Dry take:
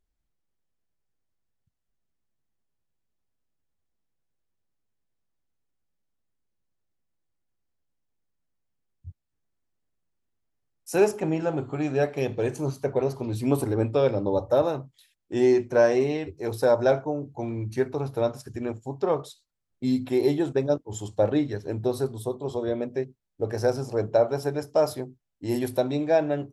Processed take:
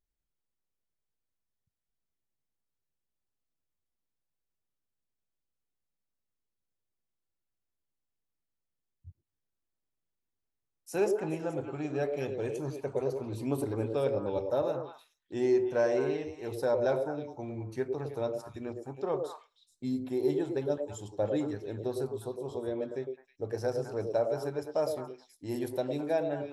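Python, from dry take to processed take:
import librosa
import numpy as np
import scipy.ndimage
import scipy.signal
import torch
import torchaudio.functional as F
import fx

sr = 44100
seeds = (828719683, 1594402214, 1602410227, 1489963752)

y = fx.dynamic_eq(x, sr, hz=2600.0, q=0.77, threshold_db=-46.0, ratio=4.0, max_db=-7, at=(19.87, 20.3))
y = fx.echo_stepped(y, sr, ms=106, hz=430.0, octaves=1.4, feedback_pct=70, wet_db=-2.0)
y = F.gain(torch.from_numpy(y), -8.5).numpy()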